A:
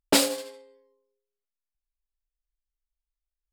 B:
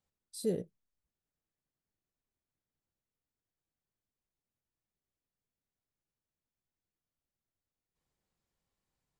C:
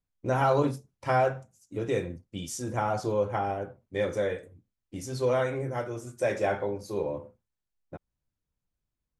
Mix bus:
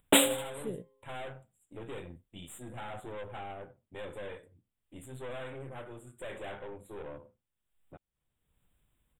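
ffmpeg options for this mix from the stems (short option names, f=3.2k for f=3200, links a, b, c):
-filter_complex "[0:a]volume=-2dB[a];[1:a]adelay=200,volume=-7.5dB[b];[2:a]acompressor=mode=upward:threshold=-40dB:ratio=2.5,aeval=exprs='(tanh(39.8*val(0)+0.6)-tanh(0.6))/39.8':c=same,volume=-11dB[c];[a][b][c]amix=inputs=3:normalize=0,equalizer=f=4.7k:w=0.78:g=6,dynaudnorm=f=150:g=11:m=4dB,asuperstop=centerf=5300:order=12:qfactor=1.4"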